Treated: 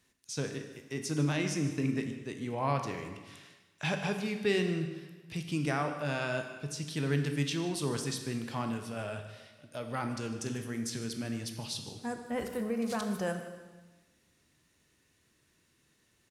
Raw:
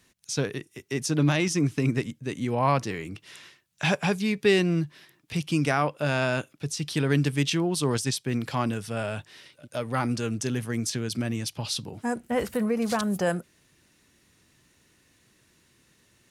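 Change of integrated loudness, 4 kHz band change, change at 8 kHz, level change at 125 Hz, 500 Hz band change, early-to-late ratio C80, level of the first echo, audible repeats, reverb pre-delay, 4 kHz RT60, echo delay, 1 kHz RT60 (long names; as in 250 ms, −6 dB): −7.5 dB, −7.5 dB, −7.5 dB, −7.5 dB, −7.0 dB, 8.5 dB, −17.0 dB, 1, 7 ms, 1.2 s, 151 ms, 1.3 s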